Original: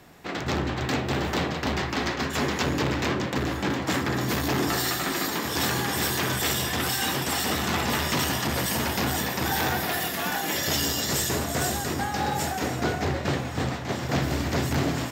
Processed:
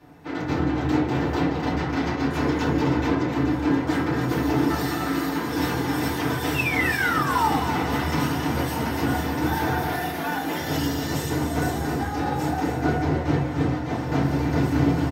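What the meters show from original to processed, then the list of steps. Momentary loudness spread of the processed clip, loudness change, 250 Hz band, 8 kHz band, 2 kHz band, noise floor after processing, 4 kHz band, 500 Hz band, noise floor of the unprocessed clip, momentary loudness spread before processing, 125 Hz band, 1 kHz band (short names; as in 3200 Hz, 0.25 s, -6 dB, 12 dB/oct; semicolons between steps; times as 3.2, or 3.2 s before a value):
5 LU, +2.0 dB, +6.0 dB, -9.0 dB, +0.5 dB, -29 dBFS, -6.0 dB, +2.0 dB, -32 dBFS, 3 LU, +4.0 dB, +3.0 dB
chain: high shelf 2300 Hz -8 dB; notch 7300 Hz, Q 12; painted sound fall, 6.54–7.58, 750–2800 Hz -26 dBFS; on a send: echo 0.264 s -8.5 dB; on the sum: FDN reverb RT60 0.38 s, low-frequency decay 1.3×, high-frequency decay 0.6×, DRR -7.5 dB; gain -7 dB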